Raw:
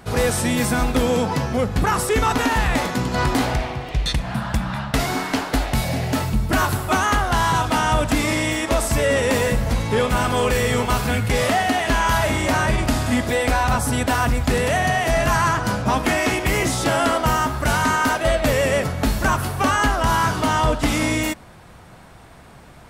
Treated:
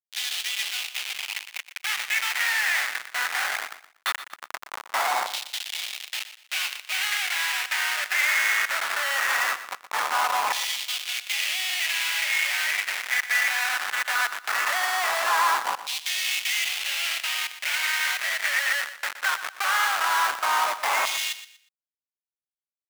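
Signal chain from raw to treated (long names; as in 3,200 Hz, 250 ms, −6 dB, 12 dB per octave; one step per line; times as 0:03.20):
Chebyshev high-pass with heavy ripple 550 Hz, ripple 9 dB
comparator with hysteresis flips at −26.5 dBFS
auto-filter high-pass saw down 0.19 Hz 970–3,500 Hz
repeating echo 120 ms, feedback 28%, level −13 dB
level +4 dB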